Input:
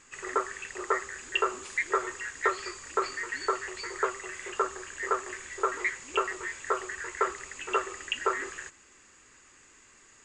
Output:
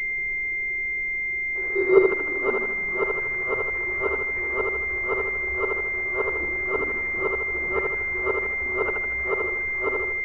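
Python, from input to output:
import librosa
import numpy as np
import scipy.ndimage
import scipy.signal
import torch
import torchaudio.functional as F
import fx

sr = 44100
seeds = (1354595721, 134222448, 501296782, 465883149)

p1 = np.flip(x).copy()
p2 = p1 + fx.echo_feedback(p1, sr, ms=78, feedback_pct=51, wet_db=-3.5, dry=0)
p3 = fx.filter_sweep_highpass(p2, sr, from_hz=380.0, to_hz=69.0, start_s=1.97, end_s=4.03, q=7.0)
p4 = 10.0 ** (-13.0 / 20.0) * np.tanh(p3 / 10.0 ** (-13.0 / 20.0))
p5 = p3 + (p4 * librosa.db_to_amplitude(-6.0))
p6 = fx.dmg_noise_colour(p5, sr, seeds[0], colour='brown', level_db=-46.0)
y = fx.pwm(p6, sr, carrier_hz=2100.0)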